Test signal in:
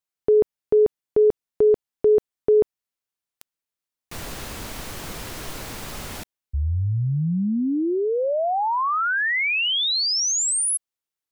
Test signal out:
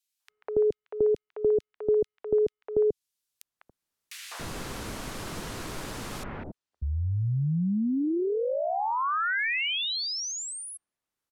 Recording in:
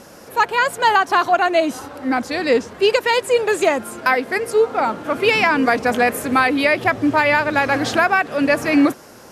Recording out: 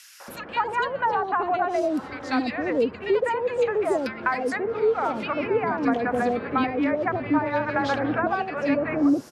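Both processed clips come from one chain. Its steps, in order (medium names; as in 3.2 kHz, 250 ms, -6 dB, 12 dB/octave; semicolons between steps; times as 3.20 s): low-pass that closes with the level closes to 920 Hz, closed at -11 dBFS; three bands offset in time highs, mids, lows 200/280 ms, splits 670/2200 Hz; three bands compressed up and down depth 40%; trim -4 dB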